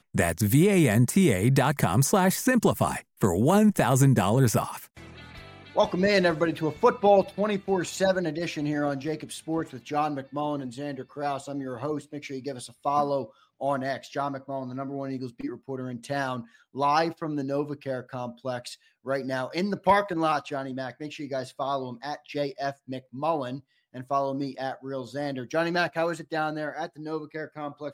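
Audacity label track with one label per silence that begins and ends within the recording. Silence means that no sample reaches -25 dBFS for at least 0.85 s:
4.690000	5.770000	silence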